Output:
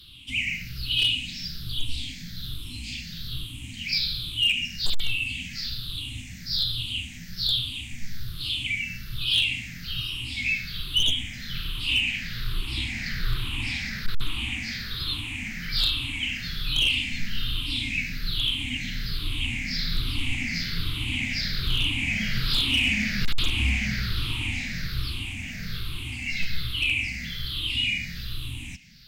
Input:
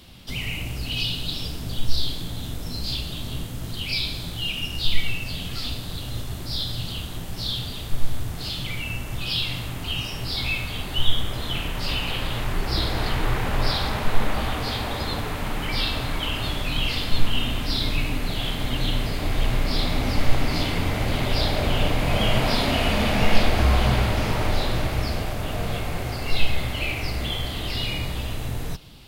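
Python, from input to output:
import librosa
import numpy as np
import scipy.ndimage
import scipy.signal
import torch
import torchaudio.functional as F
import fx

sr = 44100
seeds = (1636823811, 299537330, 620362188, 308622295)

y = fx.spec_ripple(x, sr, per_octave=0.61, drift_hz=-1.2, depth_db=17)
y = fx.curve_eq(y, sr, hz=(260.0, 580.0, 2400.0, 10000.0), db=(0, -27, 10, 0))
y = np.clip(y, -10.0 ** (-7.0 / 20.0), 10.0 ** (-7.0 / 20.0))
y = F.gain(torch.from_numpy(y), -9.0).numpy()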